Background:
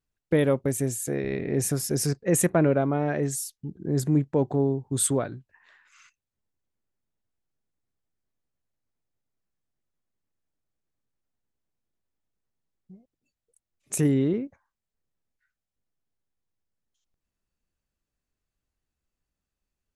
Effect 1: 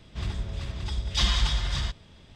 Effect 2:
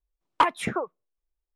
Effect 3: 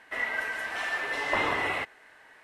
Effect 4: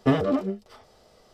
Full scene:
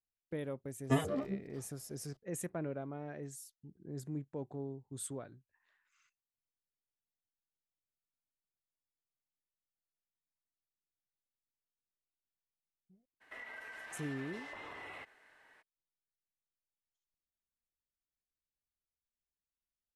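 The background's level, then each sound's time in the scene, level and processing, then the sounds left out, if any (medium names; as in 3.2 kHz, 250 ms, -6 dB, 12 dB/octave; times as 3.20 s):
background -18.5 dB
0.84 s: add 4 -5 dB + spectral noise reduction 9 dB
13.20 s: add 3 -10 dB, fades 0.02 s + compression, threshold -35 dBFS
not used: 1, 2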